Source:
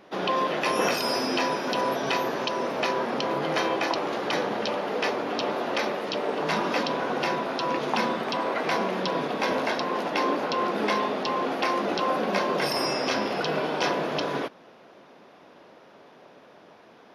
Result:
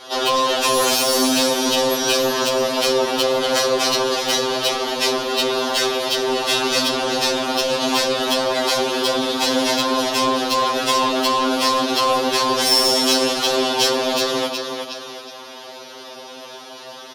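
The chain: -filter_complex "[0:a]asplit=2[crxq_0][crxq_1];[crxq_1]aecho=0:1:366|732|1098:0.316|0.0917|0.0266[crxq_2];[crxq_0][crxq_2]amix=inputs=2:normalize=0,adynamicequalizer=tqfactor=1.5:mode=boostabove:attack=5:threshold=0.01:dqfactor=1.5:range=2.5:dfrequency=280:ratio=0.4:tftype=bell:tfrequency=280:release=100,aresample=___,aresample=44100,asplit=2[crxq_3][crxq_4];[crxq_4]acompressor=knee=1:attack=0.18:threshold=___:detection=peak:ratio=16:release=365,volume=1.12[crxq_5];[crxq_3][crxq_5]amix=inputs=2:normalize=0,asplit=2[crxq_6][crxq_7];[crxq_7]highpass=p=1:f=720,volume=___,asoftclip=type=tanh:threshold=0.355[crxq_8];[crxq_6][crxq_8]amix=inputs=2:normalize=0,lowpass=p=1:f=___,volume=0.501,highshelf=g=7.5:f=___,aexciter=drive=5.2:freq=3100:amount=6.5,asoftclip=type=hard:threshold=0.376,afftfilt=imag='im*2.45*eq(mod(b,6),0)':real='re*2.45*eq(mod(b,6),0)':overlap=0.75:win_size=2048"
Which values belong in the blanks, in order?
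32000, 0.0158, 7.94, 1600, 6600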